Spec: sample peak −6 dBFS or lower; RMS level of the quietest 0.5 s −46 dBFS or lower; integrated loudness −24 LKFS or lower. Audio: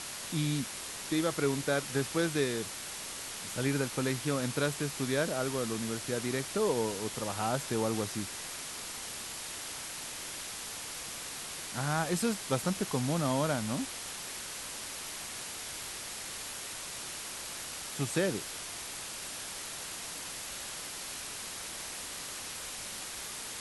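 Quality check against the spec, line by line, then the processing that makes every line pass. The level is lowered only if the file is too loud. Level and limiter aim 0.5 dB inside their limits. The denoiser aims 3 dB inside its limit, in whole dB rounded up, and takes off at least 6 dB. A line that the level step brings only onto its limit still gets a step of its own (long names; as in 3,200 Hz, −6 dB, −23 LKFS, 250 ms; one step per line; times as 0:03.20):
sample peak −16.5 dBFS: in spec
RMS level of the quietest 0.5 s −41 dBFS: out of spec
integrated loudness −34.5 LKFS: in spec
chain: broadband denoise 8 dB, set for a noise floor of −41 dBFS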